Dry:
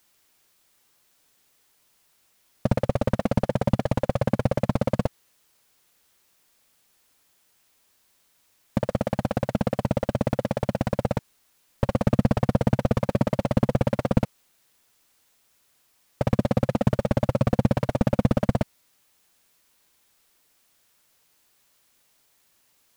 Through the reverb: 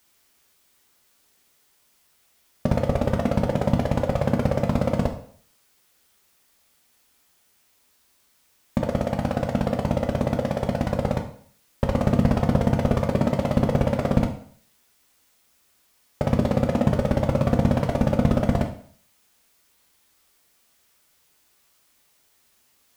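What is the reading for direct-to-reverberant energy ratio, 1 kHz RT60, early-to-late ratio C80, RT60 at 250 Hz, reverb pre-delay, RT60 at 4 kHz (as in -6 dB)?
3.0 dB, 0.55 s, 13.0 dB, 0.55 s, 4 ms, 0.50 s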